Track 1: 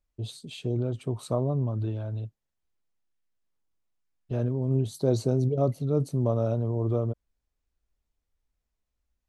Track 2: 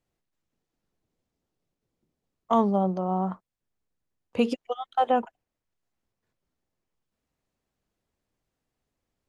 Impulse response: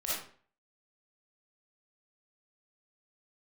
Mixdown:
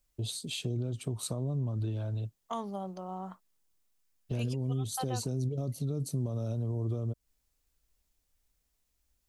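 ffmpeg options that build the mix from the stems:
-filter_complex "[0:a]highshelf=f=4.1k:g=11,alimiter=limit=-17.5dB:level=0:latency=1:release=100,acrossover=split=300|3000[a][b][c];[b]acompressor=threshold=-41dB:ratio=3[d];[a][d][c]amix=inputs=3:normalize=0,volume=2dB[e];[1:a]crystalizer=i=7:c=0,volume=-13.5dB[f];[e][f]amix=inputs=2:normalize=0,acompressor=threshold=-34dB:ratio=2"

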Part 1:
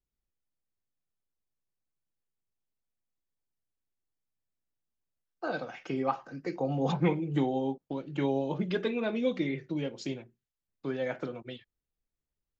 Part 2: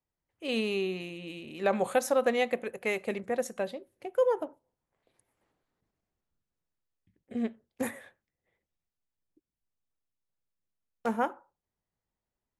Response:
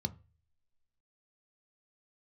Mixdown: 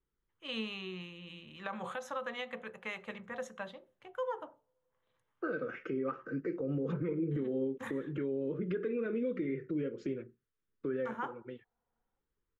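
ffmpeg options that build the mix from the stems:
-filter_complex "[0:a]firequalizer=gain_entry='entry(150,0);entry(460,9);entry(760,-22);entry(1300,5);entry(4000,-19)':delay=0.05:min_phase=1,volume=2dB[a];[1:a]acrossover=split=500 4600:gain=0.178 1 0.158[b][c][d];[b][c][d]amix=inputs=3:normalize=0,volume=-0.5dB,asplit=3[e][f][g];[f]volume=-5dB[h];[g]apad=whole_len=559754[i];[a][i]sidechaincompress=threshold=-35dB:ratio=8:attack=8.3:release=950[j];[2:a]atrim=start_sample=2205[k];[h][k]afir=irnorm=-1:irlink=0[l];[j][e][l]amix=inputs=3:normalize=0,alimiter=level_in=3dB:limit=-24dB:level=0:latency=1:release=180,volume=-3dB"

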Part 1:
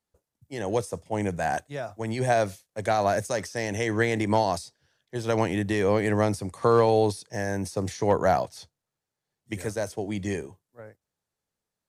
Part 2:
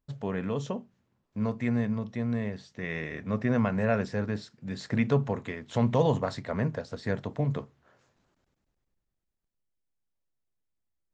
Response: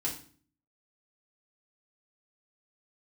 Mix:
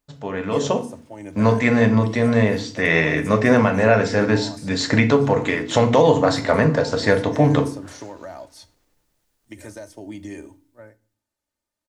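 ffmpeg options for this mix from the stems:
-filter_complex "[0:a]aecho=1:1:3.3:0.65,acompressor=threshold=-27dB:ratio=6,alimiter=level_in=1.5dB:limit=-24dB:level=0:latency=1:release=329,volume=-1.5dB,volume=-2dB,asplit=2[a][b];[b]volume=-14dB[c];[1:a]bass=f=250:g=-7,treble=f=4k:g=3,bandreject=f=60:t=h:w=6,bandreject=f=120:t=h:w=6,bandreject=f=180:t=h:w=6,bandreject=f=240:t=h:w=6,bandreject=f=300:t=h:w=6,bandreject=f=360:t=h:w=6,bandreject=f=420:t=h:w=6,bandreject=f=480:t=h:w=6,dynaudnorm=f=140:g=9:m=12dB,volume=1.5dB,asplit=2[d][e];[e]volume=-4dB[f];[2:a]atrim=start_sample=2205[g];[c][f]amix=inputs=2:normalize=0[h];[h][g]afir=irnorm=-1:irlink=0[i];[a][d][i]amix=inputs=3:normalize=0,alimiter=limit=-3.5dB:level=0:latency=1:release=393"

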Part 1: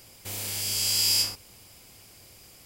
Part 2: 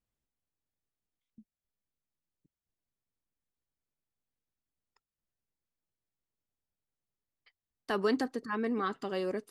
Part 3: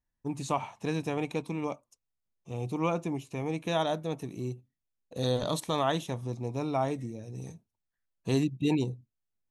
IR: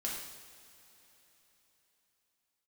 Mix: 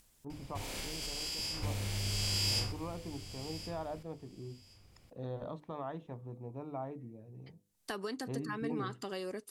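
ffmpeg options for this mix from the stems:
-filter_complex "[0:a]aemphasis=mode=reproduction:type=bsi,adelay=300,volume=-0.5dB,asplit=2[a][b];[b]volume=-3dB[c];[1:a]equalizer=f=9.9k:t=o:w=2.3:g=12,acompressor=threshold=-34dB:ratio=6,volume=-2.5dB[d];[2:a]lowpass=1.4k,volume=-10dB[e];[a][e]amix=inputs=2:normalize=0,bandreject=f=50:t=h:w=6,bandreject=f=100:t=h:w=6,bandreject=f=150:t=h:w=6,bandreject=f=200:t=h:w=6,bandreject=f=250:t=h:w=6,bandreject=f=300:t=h:w=6,bandreject=f=350:t=h:w=6,bandreject=f=400:t=h:w=6,bandreject=f=450:t=h:w=6,bandreject=f=500:t=h:w=6,alimiter=level_in=6dB:limit=-24dB:level=0:latency=1:release=153,volume=-6dB,volume=0dB[f];[c]aecho=0:1:1071|2142|3213:1|0.18|0.0324[g];[d][f][g]amix=inputs=3:normalize=0,acompressor=mode=upward:threshold=-51dB:ratio=2.5"

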